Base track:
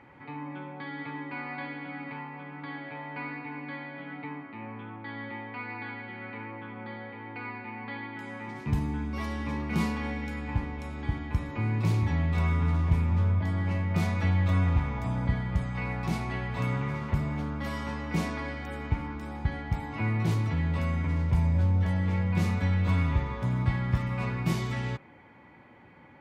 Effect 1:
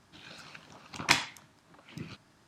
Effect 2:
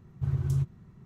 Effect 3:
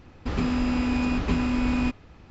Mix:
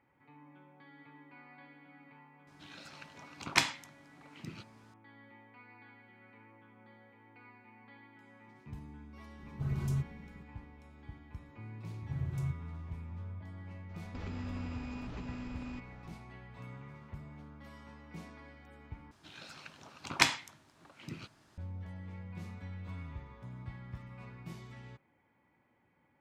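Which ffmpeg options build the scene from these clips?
ffmpeg -i bed.wav -i cue0.wav -i cue1.wav -i cue2.wav -filter_complex "[1:a]asplit=2[link_01][link_02];[2:a]asplit=2[link_03][link_04];[0:a]volume=-18.5dB[link_05];[link_03]aecho=1:1:4.7:0.82[link_06];[3:a]acompressor=threshold=-31dB:ratio=6:attack=3.2:release=140:knee=1:detection=peak[link_07];[link_02]equalizer=frequency=190:width=7.1:gain=-4[link_08];[link_05]asplit=2[link_09][link_10];[link_09]atrim=end=19.114[link_11];[link_08]atrim=end=2.47,asetpts=PTS-STARTPTS,volume=-1.5dB[link_12];[link_10]atrim=start=21.576[link_13];[link_01]atrim=end=2.47,asetpts=PTS-STARTPTS,volume=-3dB,afade=type=in:duration=0.004:curve=hsin,afade=type=out:start_time=2.466:duration=0.004:curve=hsin,adelay=2470[link_14];[link_06]atrim=end=1.05,asetpts=PTS-STARTPTS,volume=-3.5dB,afade=type=in:duration=0.004:curve=hsin,afade=type=out:start_time=1.046:duration=0.004:curve=hsin,adelay=413658S[link_15];[link_04]atrim=end=1.05,asetpts=PTS-STARTPTS,volume=-8.5dB,afade=type=in:duration=0.004:curve=hsin,afade=type=out:start_time=1.046:duration=0.004:curve=hsin,adelay=11880[link_16];[link_07]atrim=end=2.3,asetpts=PTS-STARTPTS,volume=-9dB,afade=type=in:duration=0.004:curve=hsin,afade=type=out:start_time=2.296:duration=0.004:curve=hsin,adelay=13890[link_17];[link_11][link_12]acrossfade=duration=0.004:curve1=hsin:curve2=hsin[link_18];[link_18][link_13]acrossfade=duration=0.004:curve1=hsin:curve2=hsin[link_19];[link_19][link_14][link_15][link_16][link_17]amix=inputs=5:normalize=0" out.wav

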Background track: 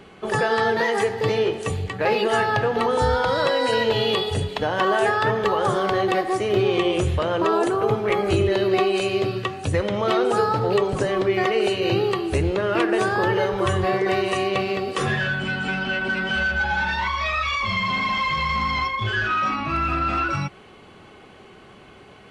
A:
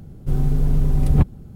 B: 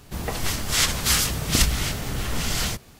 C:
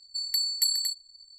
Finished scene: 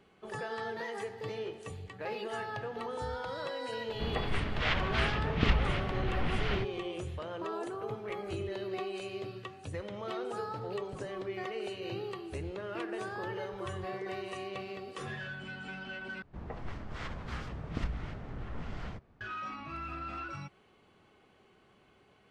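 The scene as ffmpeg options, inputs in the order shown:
ffmpeg -i bed.wav -i cue0.wav -i cue1.wav -filter_complex "[2:a]asplit=2[link_01][link_02];[0:a]volume=-17.5dB[link_03];[link_01]lowpass=frequency=2900:width=0.5412,lowpass=frequency=2900:width=1.3066[link_04];[link_02]lowpass=1500[link_05];[link_03]asplit=2[link_06][link_07];[link_06]atrim=end=16.224[link_08];[link_05]atrim=end=2.99,asetpts=PTS-STARTPTS,volume=-12.5dB[link_09];[link_07]atrim=start=19.206[link_10];[link_04]atrim=end=2.99,asetpts=PTS-STARTPTS,volume=-5dB,afade=type=in:duration=0.004:curve=hsin,afade=type=out:start_time=2.986:duration=0.004:curve=hsin,adelay=3880[link_11];[link_08][link_09]acrossfade=duration=0.004:curve1=hsin:curve2=hsin[link_12];[link_12][link_10]acrossfade=duration=0.004:curve1=hsin:curve2=hsin[link_13];[link_13][link_11]amix=inputs=2:normalize=0" out.wav

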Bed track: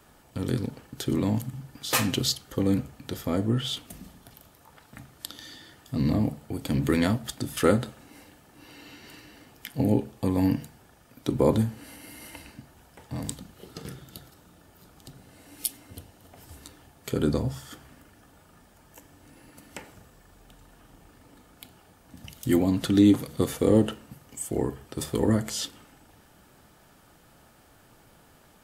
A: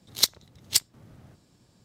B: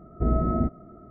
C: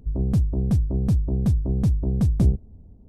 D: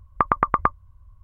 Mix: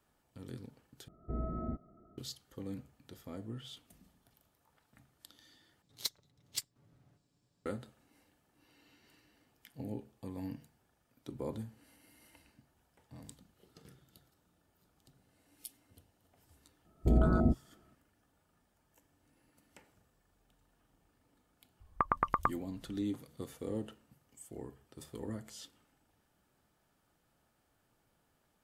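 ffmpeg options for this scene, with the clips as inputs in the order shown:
ffmpeg -i bed.wav -i cue0.wav -i cue1.wav -i cue2.wav -i cue3.wav -filter_complex "[2:a]asplit=2[link_01][link_02];[0:a]volume=-18.5dB[link_03];[1:a]aecho=1:1:7:0.41[link_04];[link_02]afwtdn=0.0501[link_05];[link_03]asplit=3[link_06][link_07][link_08];[link_06]atrim=end=1.084[link_09];[link_01]atrim=end=1.1,asetpts=PTS-STARTPTS,volume=-14.5dB[link_10];[link_07]atrim=start=2.176:end=5.824[link_11];[link_04]atrim=end=1.84,asetpts=PTS-STARTPTS,volume=-16.5dB[link_12];[link_08]atrim=start=7.656[link_13];[link_05]atrim=end=1.1,asetpts=PTS-STARTPTS,volume=-3dB,afade=type=in:duration=0.004:curve=hsin,afade=type=out:start_time=1.096:duration=0.004:curve=hsin,adelay=16850[link_14];[4:a]atrim=end=1.23,asetpts=PTS-STARTPTS,volume=-11dB,afade=type=in:duration=0.004:curve=hsin,afade=type=out:start_time=1.226:duration=0.004:curve=hsin,adelay=961380S[link_15];[link_09][link_10]acrossfade=duration=0.004:curve1=hsin:curve2=hsin[link_16];[link_16][link_11]acrossfade=duration=0.004:curve1=hsin:curve2=hsin[link_17];[link_17][link_12]acrossfade=duration=0.004:curve1=hsin:curve2=hsin[link_18];[link_18][link_13]acrossfade=duration=0.004:curve1=hsin:curve2=hsin[link_19];[link_19][link_14][link_15]amix=inputs=3:normalize=0" out.wav

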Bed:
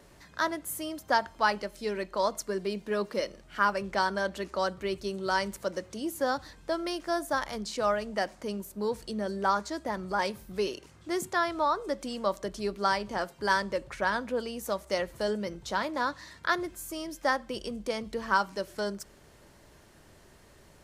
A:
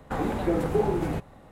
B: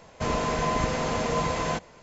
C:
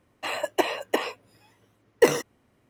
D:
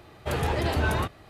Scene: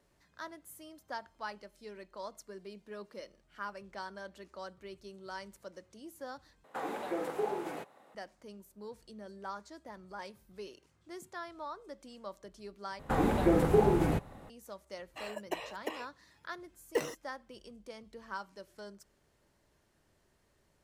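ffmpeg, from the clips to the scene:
ffmpeg -i bed.wav -i cue0.wav -i cue1.wav -i cue2.wav -filter_complex "[1:a]asplit=2[link_01][link_02];[0:a]volume=-15.5dB[link_03];[link_01]highpass=440[link_04];[link_02]equalizer=frequency=12000:width_type=o:width=0.77:gain=2[link_05];[link_03]asplit=3[link_06][link_07][link_08];[link_06]atrim=end=6.644[link_09];[link_04]atrim=end=1.51,asetpts=PTS-STARTPTS,volume=-6dB[link_10];[link_07]atrim=start=8.146:end=12.994[link_11];[link_05]atrim=end=1.51,asetpts=PTS-STARTPTS,volume=-0.5dB[link_12];[link_08]atrim=start=14.496[link_13];[3:a]atrim=end=2.69,asetpts=PTS-STARTPTS,volume=-14dB,afade=type=in:duration=0.004:curve=hsin,afade=type=out:start_time=2.686:duration=0.004:curve=hsin,adelay=14930[link_14];[link_09][link_10]acrossfade=duration=0.004:curve1=hsin:curve2=hsin[link_15];[link_15][link_11]acrossfade=duration=0.004:curve1=hsin:curve2=hsin[link_16];[link_16][link_12]acrossfade=duration=0.004:curve1=hsin:curve2=hsin[link_17];[link_17][link_13]acrossfade=duration=0.004:curve1=hsin:curve2=hsin[link_18];[link_18][link_14]amix=inputs=2:normalize=0" out.wav

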